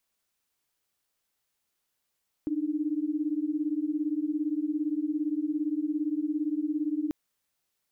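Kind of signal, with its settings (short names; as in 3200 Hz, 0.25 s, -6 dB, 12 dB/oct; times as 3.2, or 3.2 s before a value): chord D4/D#4 sine, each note -29.5 dBFS 4.64 s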